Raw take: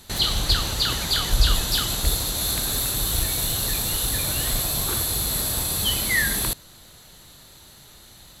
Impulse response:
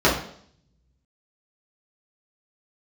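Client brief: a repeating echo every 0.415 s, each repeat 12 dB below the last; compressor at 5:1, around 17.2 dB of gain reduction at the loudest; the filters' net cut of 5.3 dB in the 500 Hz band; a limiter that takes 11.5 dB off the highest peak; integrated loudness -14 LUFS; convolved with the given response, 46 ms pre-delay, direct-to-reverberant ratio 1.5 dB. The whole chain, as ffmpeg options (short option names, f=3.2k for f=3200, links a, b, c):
-filter_complex "[0:a]equalizer=f=500:t=o:g=-7,acompressor=threshold=-33dB:ratio=5,alimiter=level_in=8dB:limit=-24dB:level=0:latency=1,volume=-8dB,aecho=1:1:415|830|1245:0.251|0.0628|0.0157,asplit=2[a][b];[1:a]atrim=start_sample=2205,adelay=46[c];[b][c]afir=irnorm=-1:irlink=0,volume=-22.5dB[d];[a][d]amix=inputs=2:normalize=0,volume=25dB"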